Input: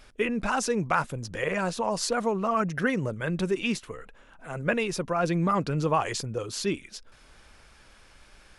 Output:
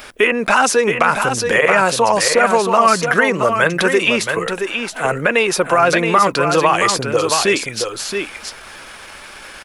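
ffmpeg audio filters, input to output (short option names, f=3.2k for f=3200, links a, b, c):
-filter_complex "[0:a]bass=f=250:g=-2,treble=f=4k:g=-11,atempo=0.89,aemphasis=mode=production:type=bsi,acrossover=split=440|1700[a][b][c];[a]acompressor=threshold=-45dB:ratio=4[d];[b]acompressor=threshold=-34dB:ratio=4[e];[c]acompressor=threshold=-38dB:ratio=4[f];[d][e][f]amix=inputs=3:normalize=0,asplit=2[g][h];[h]aecho=0:1:673:0.473[i];[g][i]amix=inputs=2:normalize=0,alimiter=level_in=21.5dB:limit=-1dB:release=50:level=0:latency=1,volume=-1dB"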